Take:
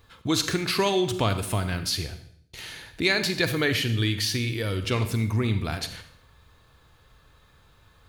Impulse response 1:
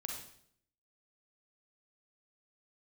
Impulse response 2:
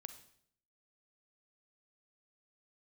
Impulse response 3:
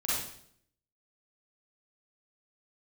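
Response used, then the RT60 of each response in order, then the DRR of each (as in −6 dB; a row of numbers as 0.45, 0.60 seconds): 2; 0.65, 0.65, 0.65 seconds; 0.5, 9.5, −9.0 decibels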